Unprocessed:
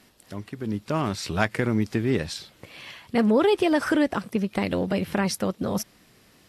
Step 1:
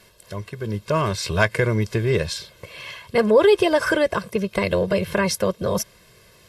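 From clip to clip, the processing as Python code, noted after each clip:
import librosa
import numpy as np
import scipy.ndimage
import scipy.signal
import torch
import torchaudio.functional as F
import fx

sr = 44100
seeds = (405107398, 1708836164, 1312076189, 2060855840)

y = x + 0.84 * np.pad(x, (int(1.9 * sr / 1000.0), 0))[:len(x)]
y = y * 10.0 ** (3.0 / 20.0)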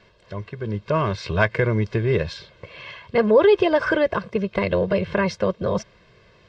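y = scipy.ndimage.gaussian_filter1d(x, 2.0, mode='constant')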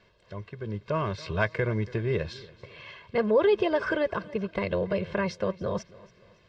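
y = fx.echo_feedback(x, sr, ms=281, feedback_pct=38, wet_db=-20.5)
y = y * 10.0 ** (-7.0 / 20.0)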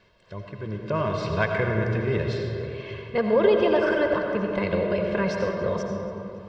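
y = fx.rev_freeverb(x, sr, rt60_s=3.1, hf_ratio=0.4, predelay_ms=45, drr_db=1.5)
y = y * 10.0 ** (1.5 / 20.0)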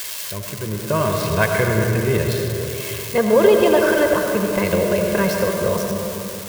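y = x + 0.5 * 10.0 ** (-23.5 / 20.0) * np.diff(np.sign(x), prepend=np.sign(x[:1]))
y = y * 10.0 ** (6.0 / 20.0)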